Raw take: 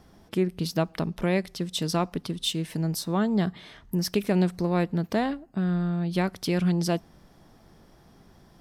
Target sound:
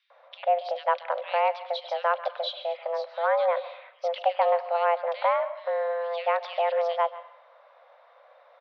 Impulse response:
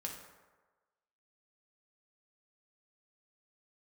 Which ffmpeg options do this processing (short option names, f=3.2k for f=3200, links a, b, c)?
-filter_complex "[0:a]asplit=2[a][b];[1:a]atrim=start_sample=2205,asetrate=61740,aresample=44100,adelay=136[c];[b][c]afir=irnorm=-1:irlink=0,volume=-11.5dB[d];[a][d]amix=inputs=2:normalize=0,highpass=f=200:t=q:w=0.5412,highpass=f=200:t=q:w=1.307,lowpass=f=3.3k:t=q:w=0.5176,lowpass=f=3.3k:t=q:w=0.7071,lowpass=f=3.3k:t=q:w=1.932,afreqshift=340,acrossover=split=2700[e][f];[e]adelay=100[g];[g][f]amix=inputs=2:normalize=0,volume=2.5dB"